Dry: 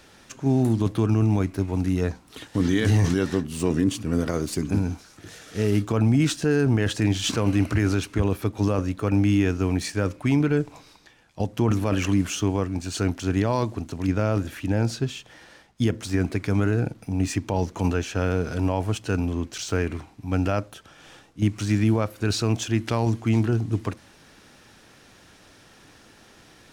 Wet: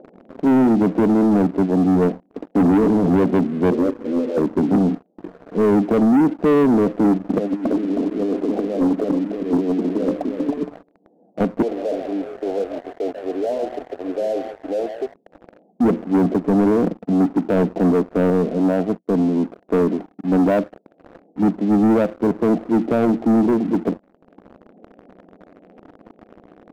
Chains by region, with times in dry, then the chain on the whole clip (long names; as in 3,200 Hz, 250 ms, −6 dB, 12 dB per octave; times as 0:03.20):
0:03.70–0:04.37: lower of the sound and its delayed copy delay 8.3 ms + phaser with its sweep stopped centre 690 Hz, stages 6
0:07.38–0:10.63: high-pass filter 220 Hz 24 dB per octave + compressor whose output falls as the input rises −31 dBFS, ratio −0.5 + single-tap delay 317 ms −6.5 dB
0:11.62–0:15.14: high-pass filter 450 Hz 24 dB per octave + gain into a clipping stage and back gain 31.5 dB + echo with shifted repeats 143 ms, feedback 49%, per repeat +120 Hz, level −9 dB
0:18.30–0:19.47: downward expander −31 dBFS + parametric band 440 Hz −3 dB 2.8 octaves
whole clip: Chebyshev band-pass filter 180–720 Hz, order 4; leveller curve on the samples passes 3; upward compression, threshold −36 dBFS; level +3 dB